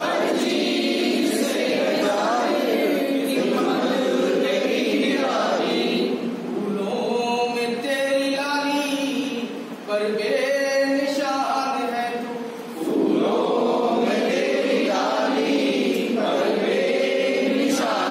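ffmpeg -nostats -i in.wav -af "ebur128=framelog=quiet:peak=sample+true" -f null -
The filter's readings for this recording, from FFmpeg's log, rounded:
Integrated loudness:
  I:         -21.8 LUFS
  Threshold: -31.8 LUFS
Loudness range:
  LRA:         2.2 LU
  Threshold: -42.0 LUFS
  LRA low:   -23.2 LUFS
  LRA high:  -21.0 LUFS
Sample peak:
  Peak:       -9.7 dBFS
True peak:
  Peak:       -9.7 dBFS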